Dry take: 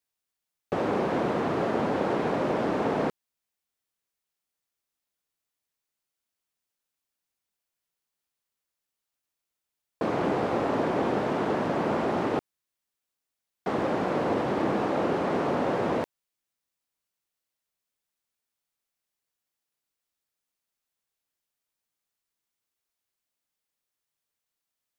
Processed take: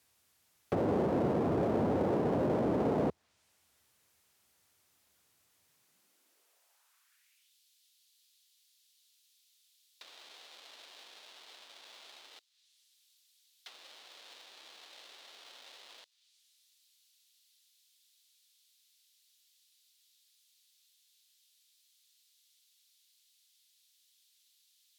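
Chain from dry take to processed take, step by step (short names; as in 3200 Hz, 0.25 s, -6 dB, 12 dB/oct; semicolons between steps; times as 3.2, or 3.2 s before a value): treble ducked by the level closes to 740 Hz, closed at -26 dBFS; power-law curve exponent 0.7; high-pass sweep 78 Hz -> 3700 Hz, 5.53–7.57; on a send: thin delay 0.228 s, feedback 78%, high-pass 5200 Hz, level -18.5 dB; on the sum: gain -6 dB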